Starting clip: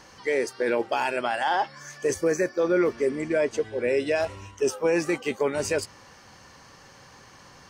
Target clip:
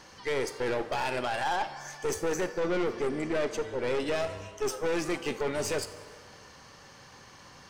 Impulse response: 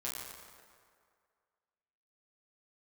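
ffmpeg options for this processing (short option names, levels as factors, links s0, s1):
-filter_complex "[0:a]equalizer=f=3500:t=o:w=0.77:g=2.5,aeval=exprs='(tanh(20*val(0)+0.5)-tanh(0.5))/20':c=same,asplit=2[s0][s1];[1:a]atrim=start_sample=2205,adelay=40[s2];[s1][s2]afir=irnorm=-1:irlink=0,volume=0.224[s3];[s0][s3]amix=inputs=2:normalize=0"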